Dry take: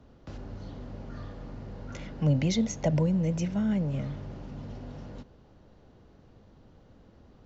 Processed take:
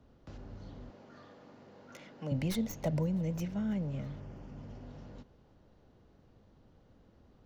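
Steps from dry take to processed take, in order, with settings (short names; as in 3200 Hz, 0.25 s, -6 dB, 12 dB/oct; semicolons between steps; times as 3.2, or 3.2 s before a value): tracing distortion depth 0.092 ms; 0.9–2.32 Bessel high-pass 320 Hz, order 2; 4.19–4.84 bell 3900 Hz -14.5 dB -> -4.5 dB 0.27 oct; thinning echo 0.327 s, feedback 42%, level -22.5 dB; gain -6.5 dB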